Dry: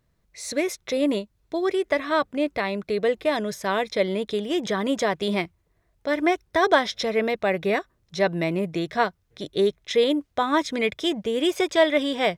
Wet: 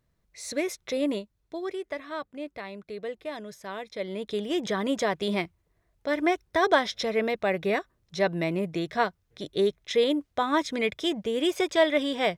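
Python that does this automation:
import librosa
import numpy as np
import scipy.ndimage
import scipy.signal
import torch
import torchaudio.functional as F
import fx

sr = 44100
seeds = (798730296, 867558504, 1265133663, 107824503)

y = fx.gain(x, sr, db=fx.line((0.98, -4.0), (2.07, -12.5), (3.91, -12.5), (4.4, -3.0)))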